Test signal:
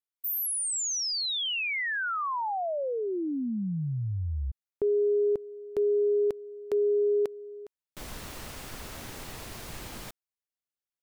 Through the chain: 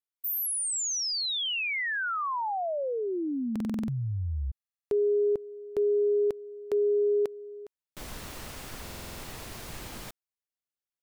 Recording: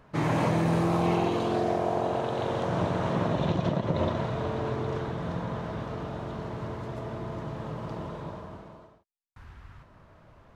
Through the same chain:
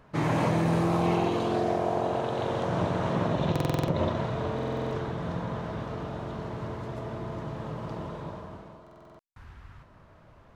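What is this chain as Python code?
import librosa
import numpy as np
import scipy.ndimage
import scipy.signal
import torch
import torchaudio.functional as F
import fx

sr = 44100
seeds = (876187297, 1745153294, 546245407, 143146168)

y = fx.buffer_glitch(x, sr, at_s=(3.51, 4.54, 8.82), block=2048, repeats=7)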